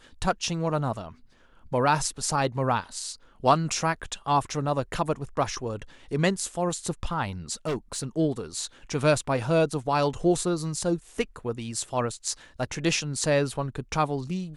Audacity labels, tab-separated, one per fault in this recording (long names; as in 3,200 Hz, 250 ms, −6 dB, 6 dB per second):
7.660000	8.040000	clipping −24.5 dBFS